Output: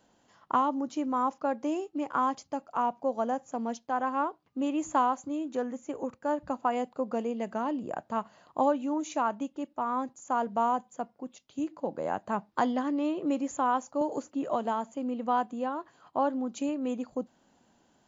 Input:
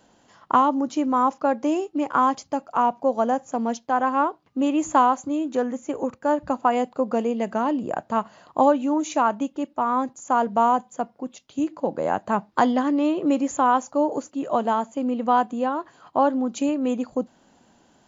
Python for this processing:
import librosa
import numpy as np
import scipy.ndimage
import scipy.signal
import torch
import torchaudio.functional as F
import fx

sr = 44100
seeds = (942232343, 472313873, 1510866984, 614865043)

y = fx.band_squash(x, sr, depth_pct=70, at=(14.01, 14.96))
y = F.gain(torch.from_numpy(y), -8.0).numpy()